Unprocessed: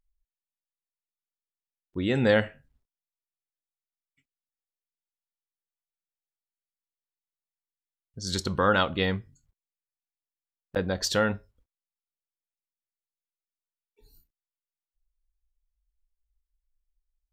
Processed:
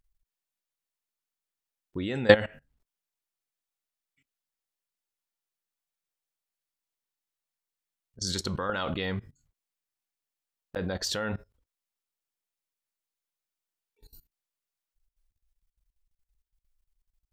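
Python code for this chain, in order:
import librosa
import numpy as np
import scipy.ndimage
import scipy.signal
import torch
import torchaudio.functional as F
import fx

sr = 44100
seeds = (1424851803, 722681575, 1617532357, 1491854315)

y = fx.low_shelf(x, sr, hz=330.0, db=-3.0)
y = fx.level_steps(y, sr, step_db=20)
y = y * 10.0 ** (9.0 / 20.0)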